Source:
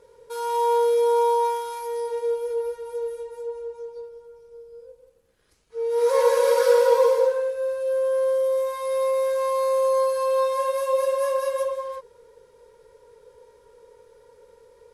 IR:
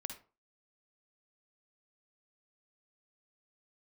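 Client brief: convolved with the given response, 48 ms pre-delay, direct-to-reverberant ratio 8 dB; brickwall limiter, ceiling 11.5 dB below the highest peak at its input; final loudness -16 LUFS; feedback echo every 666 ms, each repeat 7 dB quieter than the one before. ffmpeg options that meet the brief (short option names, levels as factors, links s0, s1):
-filter_complex "[0:a]alimiter=limit=0.126:level=0:latency=1,aecho=1:1:666|1332|1998|2664|3330:0.447|0.201|0.0905|0.0407|0.0183,asplit=2[s0][s1];[1:a]atrim=start_sample=2205,adelay=48[s2];[s1][s2]afir=irnorm=-1:irlink=0,volume=0.501[s3];[s0][s3]amix=inputs=2:normalize=0,volume=2.99"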